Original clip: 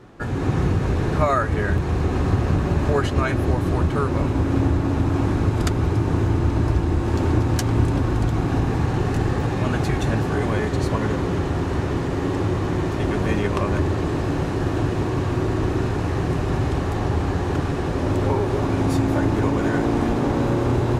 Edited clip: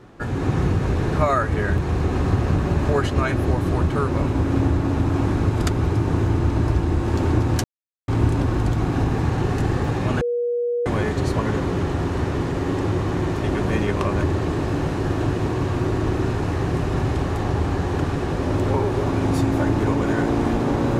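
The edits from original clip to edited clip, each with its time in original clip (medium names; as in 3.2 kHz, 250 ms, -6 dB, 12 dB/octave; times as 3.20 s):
7.64 s: insert silence 0.44 s
9.77–10.42 s: bleep 480 Hz -19.5 dBFS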